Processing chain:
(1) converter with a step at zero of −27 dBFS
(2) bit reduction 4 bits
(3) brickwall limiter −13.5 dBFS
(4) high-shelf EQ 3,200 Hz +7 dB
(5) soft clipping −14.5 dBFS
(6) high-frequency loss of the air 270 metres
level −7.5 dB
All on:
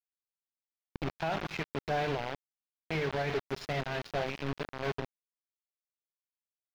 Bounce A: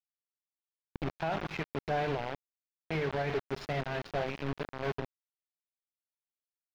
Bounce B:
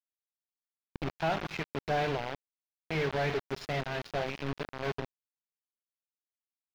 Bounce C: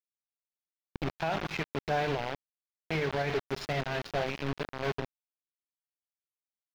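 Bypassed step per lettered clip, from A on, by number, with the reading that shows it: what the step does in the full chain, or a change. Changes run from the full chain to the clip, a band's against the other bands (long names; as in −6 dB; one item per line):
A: 4, 4 kHz band −3.0 dB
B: 3, change in momentary loudness spread +1 LU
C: 5, distortion level −17 dB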